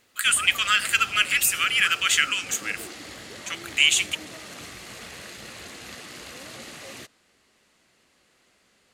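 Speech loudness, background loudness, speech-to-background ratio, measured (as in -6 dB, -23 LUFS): -20.5 LUFS, -38.0 LUFS, 17.5 dB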